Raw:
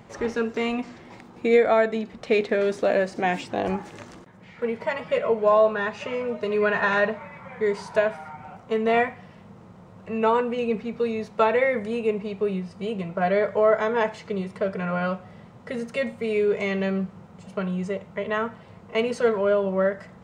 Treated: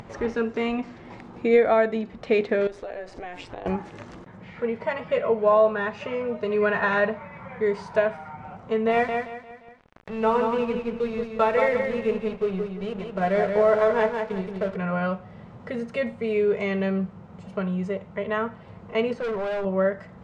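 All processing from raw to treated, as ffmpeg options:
ffmpeg -i in.wav -filter_complex "[0:a]asettb=1/sr,asplit=3[link_01][link_02][link_03];[link_01]atrim=end=2.674[link_04];[link_02]atrim=start=2.67:end=3.66,asetpts=PTS-STARTPTS,afade=type=in:duration=0.004:curve=qsin,afade=type=out:start_time=0.986:duration=0.004:curve=qsin,acompressor=threshold=-27dB:ratio=10:attack=3.2:release=140:knee=1:detection=peak,tremolo=f=180:d=0.621,equalizer=frequency=200:width=1.8:gain=-12[link_05];[link_03]atrim=start=3.656[link_06];[link_04][link_05]acrossfade=duration=0.004:curve1=hsin:curve2=qsin[link_07];[link_07][link_06]acrossfade=duration=0.004:curve1=qsin:curve2=hsin,asettb=1/sr,asplit=3[link_08][link_09][link_10];[link_08]atrim=end=8.914[link_11];[link_09]atrim=start=8.91:end=14.76,asetpts=PTS-STARTPTS,afade=type=in:duration=0.004:curve=qsin,afade=type=out:start_time=5.846:duration=0.004:curve=qsin,bandreject=frequency=56.98:width_type=h:width=4,bandreject=frequency=113.96:width_type=h:width=4,bandreject=frequency=170.94:width_type=h:width=4,bandreject=frequency=227.92:width_type=h:width=4,bandreject=frequency=284.9:width_type=h:width=4,bandreject=frequency=341.88:width_type=h:width=4,bandreject=frequency=398.86:width_type=h:width=4,bandreject=frequency=455.84:width_type=h:width=4,bandreject=frequency=512.82:width_type=h:width=4,bandreject=frequency=569.8:width_type=h:width=4,bandreject=frequency=626.78:width_type=h:width=4,bandreject=frequency=683.76:width_type=h:width=4,bandreject=frequency=740.74:width_type=h:width=4,bandreject=frequency=797.72:width_type=h:width=4,bandreject=frequency=854.7:width_type=h:width=4,bandreject=frequency=911.68:width_type=h:width=4,bandreject=frequency=968.66:width_type=h:width=4,bandreject=frequency=1025.64:width_type=h:width=4,bandreject=frequency=1082.62:width_type=h:width=4,bandreject=frequency=1139.6:width_type=h:width=4,bandreject=frequency=1196.58:width_type=h:width=4,bandreject=frequency=1253.56:width_type=h:width=4,bandreject=frequency=1310.54:width_type=h:width=4,bandreject=frequency=1367.52:width_type=h:width=4,bandreject=frequency=1424.5:width_type=h:width=4,bandreject=frequency=1481.48:width_type=h:width=4,aeval=exprs='sgn(val(0))*max(abs(val(0))-0.0106,0)':channel_layout=same,aecho=1:1:175|350|525|700:0.562|0.169|0.0506|0.0152,atrim=end_sample=257985[link_12];[link_10]atrim=start=14.756[link_13];[link_11][link_12]acrossfade=duration=0.004:curve1=hsin:curve2=qsin[link_14];[link_14][link_13]acrossfade=duration=0.004:curve1=qsin:curve2=hsin,asettb=1/sr,asplit=3[link_15][link_16][link_17];[link_15]atrim=end=19.134[link_18];[link_16]atrim=start=19.13:end=19.65,asetpts=PTS-STARTPTS,afade=type=in:duration=0.004:curve=qsin,afade=type=out:start_time=0.516:duration=0.004:curve=qsin,lowpass=frequency=1900:poles=1,volume=25.5dB,asoftclip=hard,volume=-25.5dB[link_19];[link_17]atrim=start=19.646[link_20];[link_18][link_19]acrossfade=duration=0.004:curve1=hsin:curve2=qsin[link_21];[link_21][link_20]acrossfade=duration=0.004:curve1=qsin:curve2=hsin,aemphasis=mode=reproduction:type=bsi,acompressor=mode=upward:threshold=-31dB:ratio=2.5,lowshelf=frequency=210:gain=-10" out.wav

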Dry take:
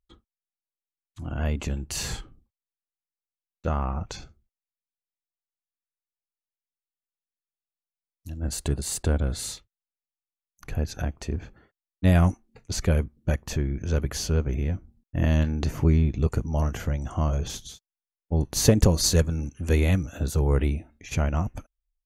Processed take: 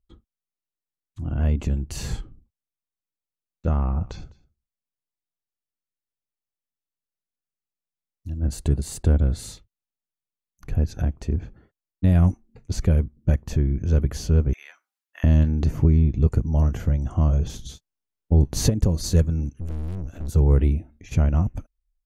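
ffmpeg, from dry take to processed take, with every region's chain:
ffmpeg -i in.wav -filter_complex "[0:a]asettb=1/sr,asplit=3[link_01][link_02][link_03];[link_01]atrim=end=3.724[link_04];[link_02]atrim=start=3.72:end=8.3,asetpts=PTS-STARTPTS,afade=type=in:duration=0.004:curve=qsin,afade=type=out:start_time=4.576:duration=0.004:curve=qsin,acrossover=split=5800[link_05][link_06];[link_06]acompressor=threshold=-57dB:ratio=4:attack=1:release=60[link_07];[link_05][link_07]amix=inputs=2:normalize=0,aecho=1:1:205:0.075,atrim=end_sample=201978[link_08];[link_03]atrim=start=8.296[link_09];[link_04][link_08]acrossfade=duration=0.004:curve1=hsin:curve2=qsin[link_10];[link_10][link_09]acrossfade=duration=0.004:curve1=qsin:curve2=hsin,asettb=1/sr,asplit=3[link_11][link_12][link_13];[link_11]atrim=end=14.534[link_14];[link_12]atrim=start=14.53:end=15.24,asetpts=PTS-STARTPTS,afade=type=in:duration=0.004:curve=qsin,afade=type=out:start_time=0.706:duration=0.004:curve=qsin,highpass=frequency=1200:width=0.5412,highpass=frequency=1200:width=1.3066,acontrast=69[link_15];[link_13]atrim=start=15.236[link_16];[link_14][link_15]acrossfade=duration=0.004:curve1=hsin:curve2=qsin[link_17];[link_17][link_16]acrossfade=duration=0.004:curve1=qsin:curve2=hsin,asettb=1/sr,asplit=3[link_18][link_19][link_20];[link_18]atrim=end=17.594[link_21];[link_19]atrim=start=17.59:end=18.7,asetpts=PTS-STARTPTS,afade=type=in:duration=0.004:curve=qsin,afade=type=out:start_time=1.106:duration=0.004:curve=qsin,highshelf=frequency=11000:gain=-4.5,acontrast=32,asplit=2[link_22][link_23];[link_23]adelay=15,volume=-12.5dB[link_24];[link_22][link_24]amix=inputs=2:normalize=0,atrim=end_sample=48951[link_25];[link_20]atrim=start=18.696[link_26];[link_21][link_25]acrossfade=duration=0.004:curve1=hsin:curve2=qsin[link_27];[link_27][link_26]acrossfade=duration=0.004:curve1=qsin:curve2=hsin,asettb=1/sr,asplit=3[link_28][link_29][link_30];[link_28]atrim=end=19.534[link_31];[link_29]atrim=start=19.53:end=20.29,asetpts=PTS-STARTPTS,afade=type=in:duration=0.004:curve=qsin,afade=type=out:start_time=0.756:duration=0.004:curve=qsin,lowshelf=frequency=470:gain=3,acrossover=split=350|3000[link_32][link_33][link_34];[link_33]acompressor=threshold=-29dB:ratio=6:attack=3.2:release=140:knee=2.83:detection=peak[link_35];[link_32][link_35][link_34]amix=inputs=3:normalize=0,aeval=exprs='(tanh(50.1*val(0)+0.8)-tanh(0.8))/50.1':channel_layout=same[link_36];[link_30]atrim=start=20.286[link_37];[link_31][link_36]acrossfade=duration=0.004:curve1=hsin:curve2=qsin[link_38];[link_38][link_37]acrossfade=duration=0.004:curve1=qsin:curve2=hsin,lowshelf=frequency=450:gain=12,alimiter=limit=-2.5dB:level=0:latency=1:release=438,volume=-5.5dB" out.wav

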